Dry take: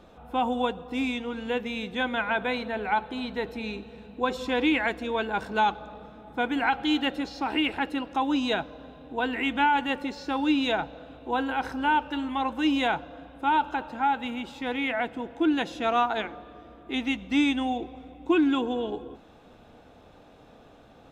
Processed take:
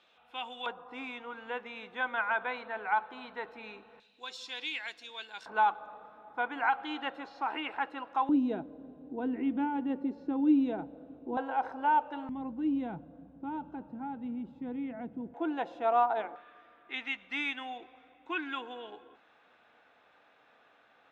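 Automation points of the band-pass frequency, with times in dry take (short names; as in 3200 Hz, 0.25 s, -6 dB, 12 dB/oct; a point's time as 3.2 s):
band-pass, Q 1.6
2900 Hz
from 0.66 s 1200 Hz
from 4 s 4900 Hz
from 5.46 s 1100 Hz
from 8.29 s 280 Hz
from 11.37 s 730 Hz
from 12.29 s 180 Hz
from 15.34 s 760 Hz
from 16.36 s 1800 Hz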